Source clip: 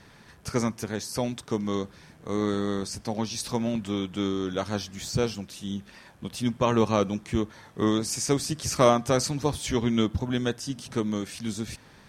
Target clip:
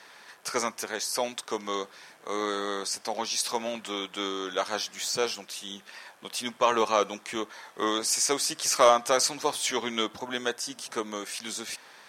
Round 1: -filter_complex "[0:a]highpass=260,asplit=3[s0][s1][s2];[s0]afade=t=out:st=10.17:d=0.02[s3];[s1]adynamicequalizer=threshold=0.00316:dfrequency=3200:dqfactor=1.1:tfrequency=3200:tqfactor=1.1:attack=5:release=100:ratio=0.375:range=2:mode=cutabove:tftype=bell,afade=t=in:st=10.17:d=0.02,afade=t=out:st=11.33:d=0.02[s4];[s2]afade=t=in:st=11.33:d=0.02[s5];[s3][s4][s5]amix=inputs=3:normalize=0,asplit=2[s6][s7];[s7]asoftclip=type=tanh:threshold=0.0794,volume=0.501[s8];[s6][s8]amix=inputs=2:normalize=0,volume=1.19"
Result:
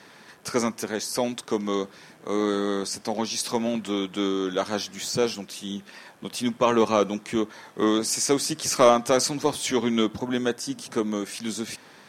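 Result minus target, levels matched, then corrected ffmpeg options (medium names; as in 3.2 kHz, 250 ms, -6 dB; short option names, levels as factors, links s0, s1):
250 Hz band +8.5 dB
-filter_complex "[0:a]highpass=620,asplit=3[s0][s1][s2];[s0]afade=t=out:st=10.17:d=0.02[s3];[s1]adynamicequalizer=threshold=0.00316:dfrequency=3200:dqfactor=1.1:tfrequency=3200:tqfactor=1.1:attack=5:release=100:ratio=0.375:range=2:mode=cutabove:tftype=bell,afade=t=in:st=10.17:d=0.02,afade=t=out:st=11.33:d=0.02[s4];[s2]afade=t=in:st=11.33:d=0.02[s5];[s3][s4][s5]amix=inputs=3:normalize=0,asplit=2[s6][s7];[s7]asoftclip=type=tanh:threshold=0.0794,volume=0.501[s8];[s6][s8]amix=inputs=2:normalize=0,volume=1.19"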